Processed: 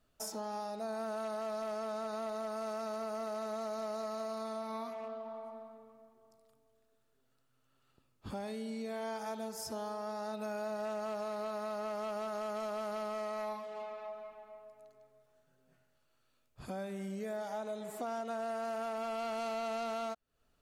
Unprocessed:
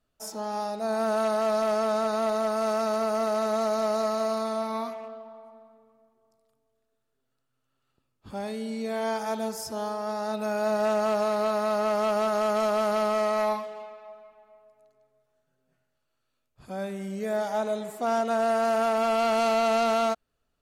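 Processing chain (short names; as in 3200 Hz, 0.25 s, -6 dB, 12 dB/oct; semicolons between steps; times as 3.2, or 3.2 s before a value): compressor 4:1, threshold -43 dBFS, peak gain reduction 17 dB; gain +3 dB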